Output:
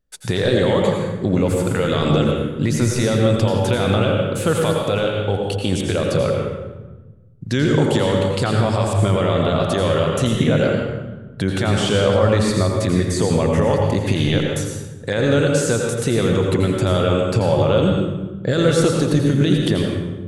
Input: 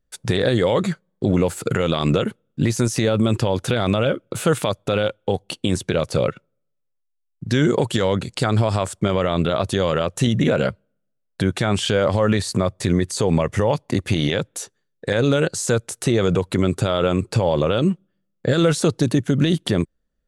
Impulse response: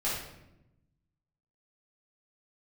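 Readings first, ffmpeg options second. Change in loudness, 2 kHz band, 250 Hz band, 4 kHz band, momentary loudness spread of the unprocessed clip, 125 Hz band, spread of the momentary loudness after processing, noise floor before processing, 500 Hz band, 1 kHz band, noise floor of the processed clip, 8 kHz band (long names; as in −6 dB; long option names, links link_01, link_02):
+2.5 dB, +2.0 dB, +2.0 dB, +1.5 dB, 6 LU, +3.0 dB, 6 LU, −73 dBFS, +2.5 dB, +2.0 dB, −36 dBFS, +1.0 dB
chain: -filter_complex "[0:a]asplit=2[link_01][link_02];[1:a]atrim=start_sample=2205,asetrate=29547,aresample=44100,adelay=83[link_03];[link_02][link_03]afir=irnorm=-1:irlink=0,volume=-10.5dB[link_04];[link_01][link_04]amix=inputs=2:normalize=0,volume=-1dB"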